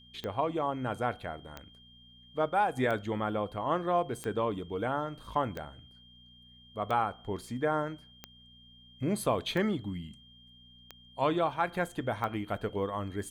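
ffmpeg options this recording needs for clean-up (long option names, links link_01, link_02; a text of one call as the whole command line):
ffmpeg -i in.wav -af "adeclick=threshold=4,bandreject=frequency=60.6:width_type=h:width=4,bandreject=frequency=121.2:width_type=h:width=4,bandreject=frequency=181.8:width_type=h:width=4,bandreject=frequency=242.4:width_type=h:width=4,bandreject=frequency=3200:width=30,agate=range=-21dB:threshold=-49dB" out.wav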